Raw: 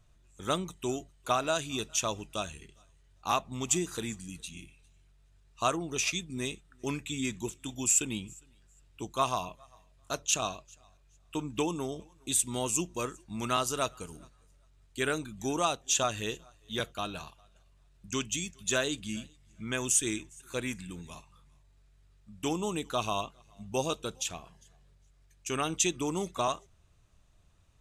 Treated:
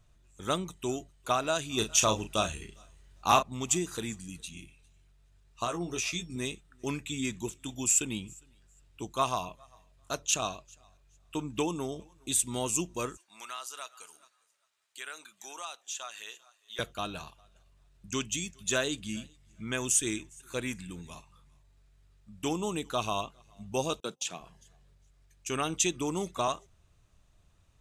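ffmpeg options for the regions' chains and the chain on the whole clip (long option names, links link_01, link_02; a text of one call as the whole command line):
ffmpeg -i in.wav -filter_complex "[0:a]asettb=1/sr,asplit=3[link_01][link_02][link_03];[link_01]atrim=end=1.774[link_04];[link_02]atrim=start=1.77:end=3.43,asetpts=PTS-STARTPTS,afade=type=in:duration=0.004:curve=qsin,afade=type=out:start_time=1.656:duration=0.004:curve=qsin,acontrast=40,asplit=2[link_05][link_06];[link_06]adelay=37,volume=-8.5dB[link_07];[link_05][link_07]amix=inputs=2:normalize=0,atrim=end_sample=73206[link_08];[link_03]atrim=start=3.426[link_09];[link_04][link_08]acrossfade=duration=0.004:curve1=hsin:curve2=qsin[link_10];[link_10][link_09]acrossfade=duration=0.004:curve1=qsin:curve2=hsin,asettb=1/sr,asplit=3[link_11][link_12][link_13];[link_11]atrim=end=5.644[link_14];[link_12]atrim=start=5.64:end=6.36,asetpts=PTS-STARTPTS,afade=type=in:duration=0.004:curve=qsin,afade=type=out:start_time=0.716:duration=0.004:curve=qsin,aeval=exprs='val(0)+0.001*sin(2*PI*5500*n/s)':channel_layout=same,acompressor=threshold=-30dB:ratio=3:attack=3.2:release=140:knee=1:detection=peak,asplit=2[link_15][link_16];[link_16]adelay=17,volume=-5dB[link_17];[link_15][link_17]amix=inputs=2:normalize=0,atrim=end_sample=31752[link_18];[link_13]atrim=start=6.356[link_19];[link_14][link_18]acrossfade=duration=0.004:curve1=hsin:curve2=qsin[link_20];[link_20][link_19]acrossfade=duration=0.004:curve1=qsin:curve2=hsin,asettb=1/sr,asplit=3[link_21][link_22][link_23];[link_21]atrim=end=13.174[link_24];[link_22]atrim=start=13.17:end=16.79,asetpts=PTS-STARTPTS,afade=type=in:duration=0.004:curve=qsin,afade=type=out:start_time=3.616:duration=0.004:curve=qsin,highpass=1000,acompressor=threshold=-43dB:ratio=2:attack=3.2:release=140:knee=1:detection=peak[link_25];[link_23]atrim=start=16.786[link_26];[link_24][link_25]acrossfade=duration=0.004:curve1=hsin:curve2=qsin[link_27];[link_27][link_26]acrossfade=duration=0.004:curve1=qsin:curve2=hsin,asettb=1/sr,asplit=3[link_28][link_29][link_30];[link_28]atrim=end=24.004[link_31];[link_29]atrim=start=24:end=24.41,asetpts=PTS-STARTPTS,afade=type=in:duration=0.004:curve=qsin,afade=type=out:start_time=0.406:duration=0.004:curve=qsin,agate=range=-27dB:threshold=-47dB:ratio=16:release=100:detection=peak,acrossover=split=9400[link_32][link_33];[link_33]acompressor=threshold=-57dB:ratio=4:attack=1:release=60[link_34];[link_32][link_34]amix=inputs=2:normalize=0,highpass=frequency=150:width=0.5412,highpass=frequency=150:width=1.3066[link_35];[link_30]atrim=start=24.406[link_36];[link_31][link_35]acrossfade=duration=0.004:curve1=hsin:curve2=qsin[link_37];[link_37][link_36]acrossfade=duration=0.004:curve1=qsin:curve2=hsin" out.wav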